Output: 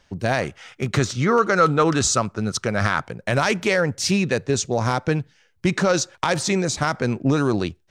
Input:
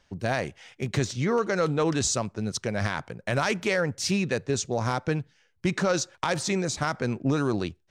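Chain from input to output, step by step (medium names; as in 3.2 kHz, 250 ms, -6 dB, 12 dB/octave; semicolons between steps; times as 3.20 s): 0.41–3.01 s: peaking EQ 1.3 kHz +10 dB 0.37 oct; trim +5.5 dB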